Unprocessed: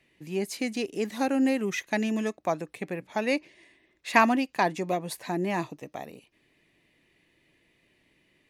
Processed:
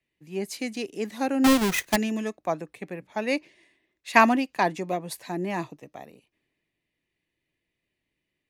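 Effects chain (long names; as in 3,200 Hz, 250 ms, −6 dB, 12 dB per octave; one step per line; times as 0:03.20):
0:01.44–0:01.96: each half-wave held at its own peak
multiband upward and downward expander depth 40%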